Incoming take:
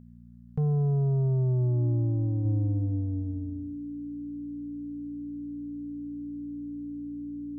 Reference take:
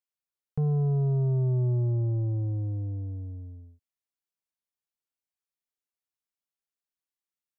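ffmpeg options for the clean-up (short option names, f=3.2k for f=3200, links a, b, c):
-af "bandreject=f=59:t=h:w=4,bandreject=f=118:t=h:w=4,bandreject=f=177:t=h:w=4,bandreject=f=236:t=h:w=4,bandreject=f=290:w=30,agate=range=-21dB:threshold=-29dB,asetnsamples=n=441:p=0,asendcmd='2.45 volume volume -3.5dB',volume=0dB"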